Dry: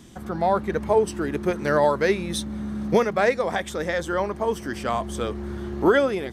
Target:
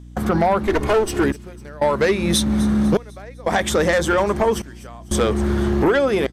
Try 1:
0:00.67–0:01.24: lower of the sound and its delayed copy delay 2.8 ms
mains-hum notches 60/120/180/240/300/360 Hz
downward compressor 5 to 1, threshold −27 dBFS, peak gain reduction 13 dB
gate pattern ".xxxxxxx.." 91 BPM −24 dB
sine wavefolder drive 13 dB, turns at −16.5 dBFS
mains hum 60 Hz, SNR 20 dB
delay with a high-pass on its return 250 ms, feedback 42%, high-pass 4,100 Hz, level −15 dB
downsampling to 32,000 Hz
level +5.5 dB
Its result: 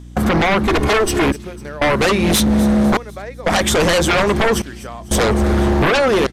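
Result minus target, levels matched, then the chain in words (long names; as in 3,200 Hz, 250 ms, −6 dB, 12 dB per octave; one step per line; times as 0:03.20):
sine wavefolder: distortion +16 dB
0:00.67–0:01.24: lower of the sound and its delayed copy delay 2.8 ms
mains-hum notches 60/120/180/240/300/360 Hz
downward compressor 5 to 1, threshold −27 dBFS, peak gain reduction 13 dB
gate pattern ".xxxxxxx.." 91 BPM −24 dB
sine wavefolder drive 5 dB, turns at −16.5 dBFS
mains hum 60 Hz, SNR 20 dB
delay with a high-pass on its return 250 ms, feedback 42%, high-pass 4,100 Hz, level −15 dB
downsampling to 32,000 Hz
level +5.5 dB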